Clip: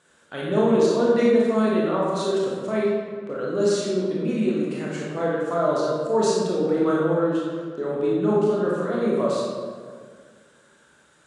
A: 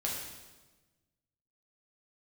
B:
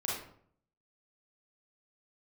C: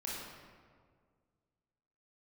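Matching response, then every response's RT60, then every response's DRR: C; 1.2, 0.60, 1.9 seconds; −4.0, −5.5, −6.0 decibels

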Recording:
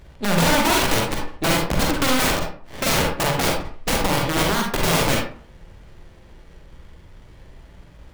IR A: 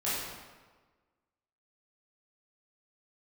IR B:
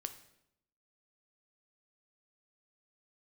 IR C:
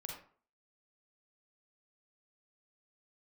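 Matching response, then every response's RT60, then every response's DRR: C; 1.4, 0.80, 0.45 seconds; −11.0, 8.5, −0.5 decibels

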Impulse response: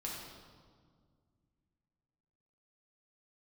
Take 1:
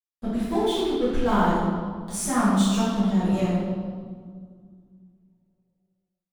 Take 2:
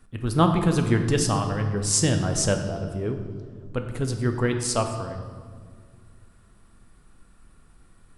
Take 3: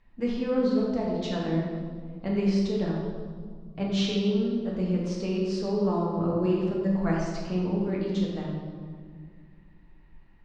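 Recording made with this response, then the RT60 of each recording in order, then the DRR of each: 3; 1.9, 1.9, 1.9 seconds; −12.5, 5.0, −4.0 decibels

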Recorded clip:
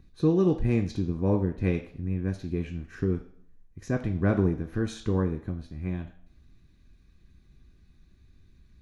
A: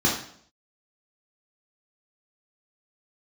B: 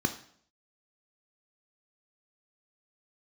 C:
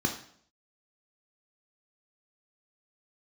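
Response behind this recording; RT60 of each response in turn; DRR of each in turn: B; 0.60, 0.60, 0.60 seconds; −5.0, 6.0, 2.0 decibels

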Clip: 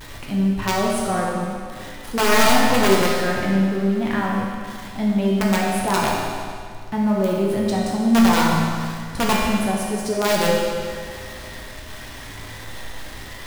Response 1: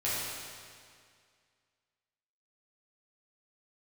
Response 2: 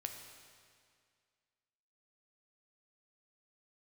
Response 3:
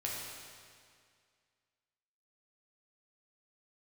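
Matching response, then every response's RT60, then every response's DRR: 3; 2.1, 2.1, 2.1 seconds; −10.0, 4.0, −4.5 decibels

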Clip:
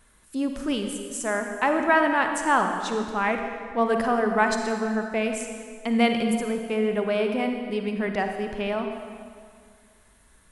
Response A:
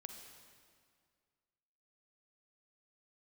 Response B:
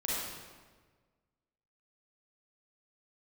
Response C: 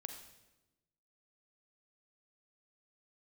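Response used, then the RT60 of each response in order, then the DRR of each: A; 2.1, 1.5, 1.0 seconds; 4.5, −7.5, 5.0 decibels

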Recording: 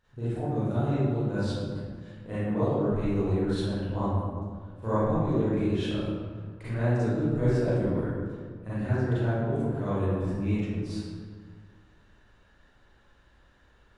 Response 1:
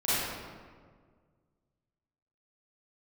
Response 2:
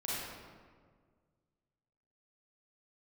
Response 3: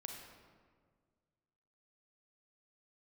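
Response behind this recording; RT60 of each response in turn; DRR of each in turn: 1; 1.7, 1.7, 1.7 seconds; −13.5, −8.5, 1.5 decibels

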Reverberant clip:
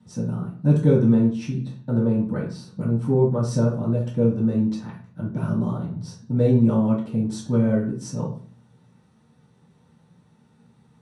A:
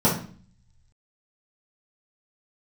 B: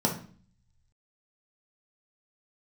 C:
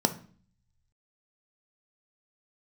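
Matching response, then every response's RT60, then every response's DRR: A; 0.45, 0.45, 0.45 seconds; −8.5, −0.5, 8.0 decibels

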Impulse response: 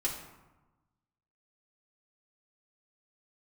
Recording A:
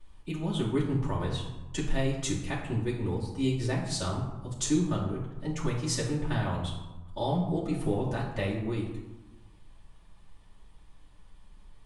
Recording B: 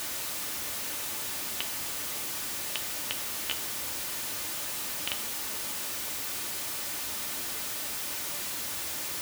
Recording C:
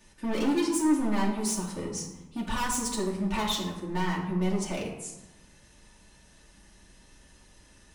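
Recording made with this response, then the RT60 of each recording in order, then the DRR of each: C; 1.1, 1.1, 1.1 seconds; −12.5, 5.0, −5.0 decibels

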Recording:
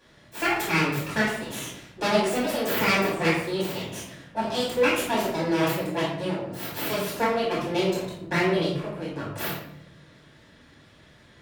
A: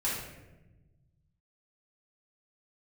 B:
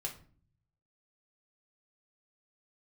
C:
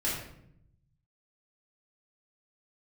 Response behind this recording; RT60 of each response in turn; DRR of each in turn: C; 1.1, 0.45, 0.70 seconds; −8.0, −1.0, −8.5 decibels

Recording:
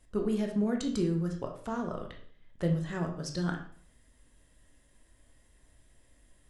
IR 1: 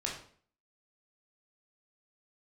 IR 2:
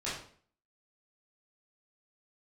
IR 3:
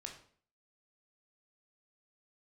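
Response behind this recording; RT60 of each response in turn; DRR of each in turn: 3; 0.50, 0.50, 0.50 seconds; −2.5, −10.5, 1.5 decibels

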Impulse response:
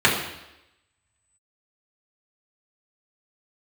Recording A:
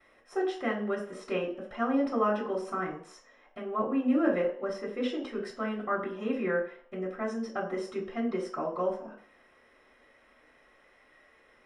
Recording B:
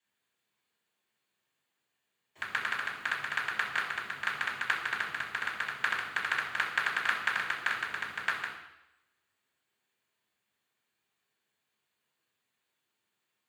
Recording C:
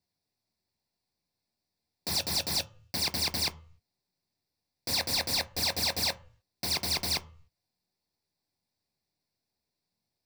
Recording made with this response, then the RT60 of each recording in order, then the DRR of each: B; 0.60, 0.90, 0.45 seconds; −14.0, −6.0, 9.5 decibels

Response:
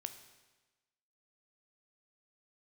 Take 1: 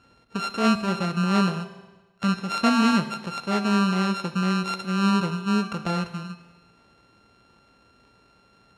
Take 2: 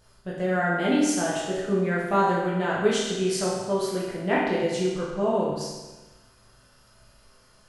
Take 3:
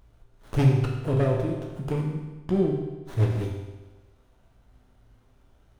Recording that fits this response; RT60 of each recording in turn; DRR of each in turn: 1; 1.2, 1.2, 1.2 seconds; 8.5, −6.5, −1.0 decibels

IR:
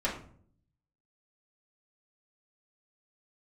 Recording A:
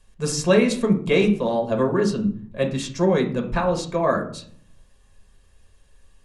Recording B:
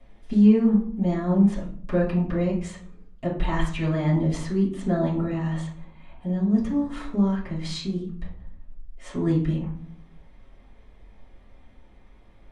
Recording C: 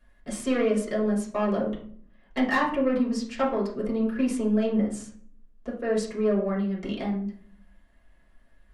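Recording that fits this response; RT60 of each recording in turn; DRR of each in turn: C; 0.55, 0.55, 0.55 seconds; 1.5, −11.0, −6.5 decibels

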